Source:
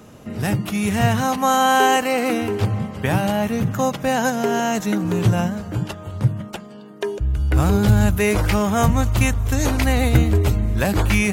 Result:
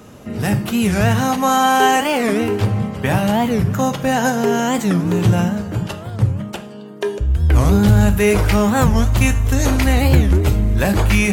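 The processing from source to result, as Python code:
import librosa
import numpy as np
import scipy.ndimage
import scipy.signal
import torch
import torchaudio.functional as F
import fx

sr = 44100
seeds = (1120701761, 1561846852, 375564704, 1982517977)

p1 = 10.0 ** (-14.5 / 20.0) * np.tanh(x / 10.0 ** (-14.5 / 20.0))
p2 = x + F.gain(torch.from_numpy(p1), -5.0).numpy()
p3 = fx.rev_plate(p2, sr, seeds[0], rt60_s=0.53, hf_ratio=0.9, predelay_ms=0, drr_db=8.0)
p4 = fx.record_warp(p3, sr, rpm=45.0, depth_cents=250.0)
y = F.gain(torch.from_numpy(p4), -1.0).numpy()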